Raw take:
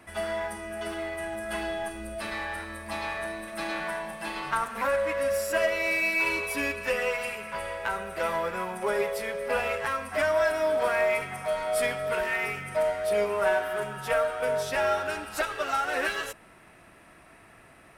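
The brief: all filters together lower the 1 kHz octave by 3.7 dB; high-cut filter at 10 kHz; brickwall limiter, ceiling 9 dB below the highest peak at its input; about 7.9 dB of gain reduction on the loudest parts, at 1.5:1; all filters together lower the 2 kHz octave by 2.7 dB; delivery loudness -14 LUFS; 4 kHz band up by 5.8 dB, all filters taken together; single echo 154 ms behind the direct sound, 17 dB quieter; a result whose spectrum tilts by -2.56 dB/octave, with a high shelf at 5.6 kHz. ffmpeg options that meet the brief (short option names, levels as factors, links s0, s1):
-af "lowpass=10000,equalizer=f=1000:t=o:g=-4,equalizer=f=2000:t=o:g=-5.5,equalizer=f=4000:t=o:g=7,highshelf=f=5600:g=7.5,acompressor=threshold=0.00562:ratio=1.5,alimiter=level_in=2.24:limit=0.0631:level=0:latency=1,volume=0.447,aecho=1:1:154:0.141,volume=18.8"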